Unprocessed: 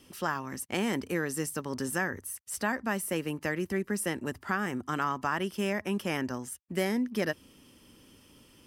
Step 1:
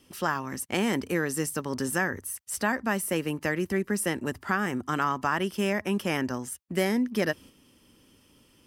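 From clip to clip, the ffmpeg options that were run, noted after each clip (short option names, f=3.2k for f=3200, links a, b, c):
-af "agate=range=-6dB:threshold=-50dB:ratio=16:detection=peak,volume=3.5dB"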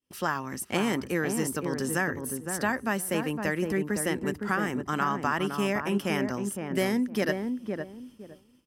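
-filter_complex "[0:a]asplit=2[a][b];[b]adelay=512,lowpass=f=850:p=1,volume=-4dB,asplit=2[c][d];[d]adelay=512,lowpass=f=850:p=1,volume=0.25,asplit=2[e][f];[f]adelay=512,lowpass=f=850:p=1,volume=0.25[g];[a][c][e][g]amix=inputs=4:normalize=0,agate=range=-33dB:threshold=-46dB:ratio=3:detection=peak,volume=-1dB"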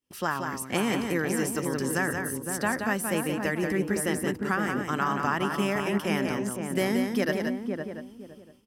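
-af "aecho=1:1:177:0.531"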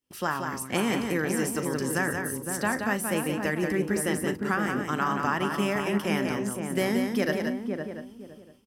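-filter_complex "[0:a]asplit=2[a][b];[b]adelay=39,volume=-13.5dB[c];[a][c]amix=inputs=2:normalize=0"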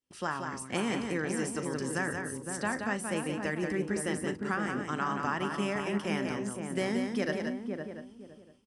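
-af "aresample=22050,aresample=44100,volume=-5dB"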